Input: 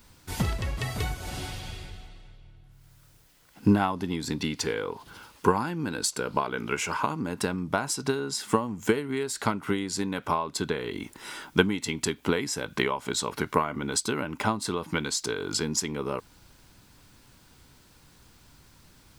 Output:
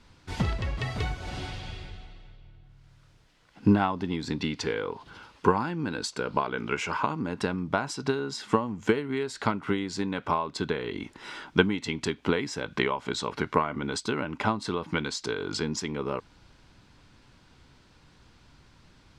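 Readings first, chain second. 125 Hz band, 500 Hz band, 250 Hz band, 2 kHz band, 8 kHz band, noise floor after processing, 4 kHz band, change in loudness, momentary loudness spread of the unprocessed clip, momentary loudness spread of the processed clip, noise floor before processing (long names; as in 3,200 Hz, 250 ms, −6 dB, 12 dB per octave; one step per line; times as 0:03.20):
0.0 dB, 0.0 dB, 0.0 dB, 0.0 dB, −9.0 dB, −59 dBFS, −2.0 dB, −0.5 dB, 10 LU, 11 LU, −57 dBFS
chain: low-pass filter 4,600 Hz 12 dB per octave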